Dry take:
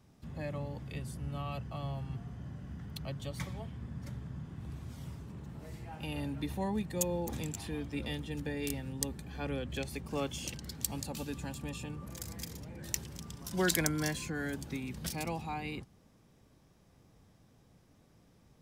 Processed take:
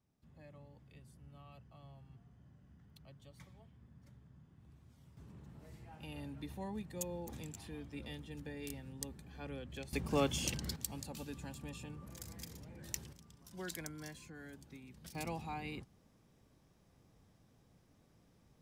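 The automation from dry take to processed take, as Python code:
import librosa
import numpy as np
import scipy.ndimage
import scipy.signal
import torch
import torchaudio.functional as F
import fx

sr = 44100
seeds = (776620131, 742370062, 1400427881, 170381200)

y = fx.gain(x, sr, db=fx.steps((0.0, -18.0), (5.17, -9.0), (9.93, 3.0), (10.76, -6.5), (13.13, -15.0), (15.15, -4.5)))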